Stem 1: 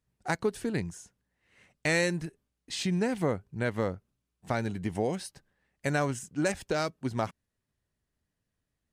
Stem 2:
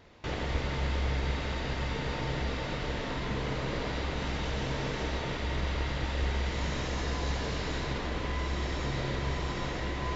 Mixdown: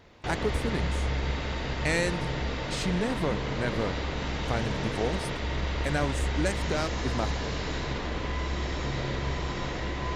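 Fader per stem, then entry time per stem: -1.0 dB, +1.5 dB; 0.00 s, 0.00 s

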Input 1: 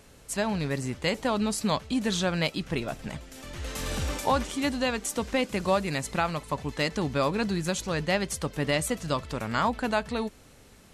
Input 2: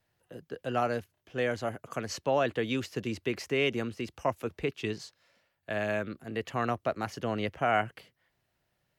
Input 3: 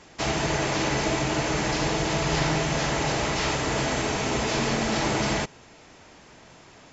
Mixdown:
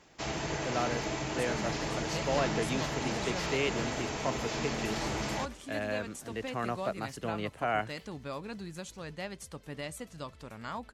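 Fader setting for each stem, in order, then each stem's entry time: -13.5 dB, -4.0 dB, -9.5 dB; 1.10 s, 0.00 s, 0.00 s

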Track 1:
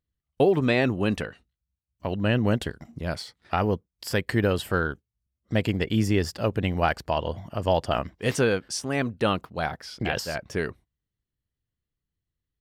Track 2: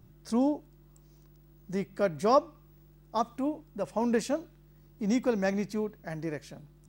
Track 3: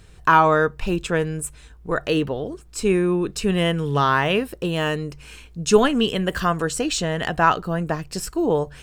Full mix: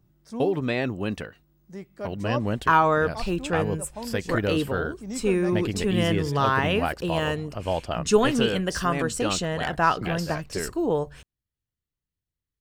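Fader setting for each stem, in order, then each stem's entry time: -4.0 dB, -7.0 dB, -4.0 dB; 0.00 s, 0.00 s, 2.40 s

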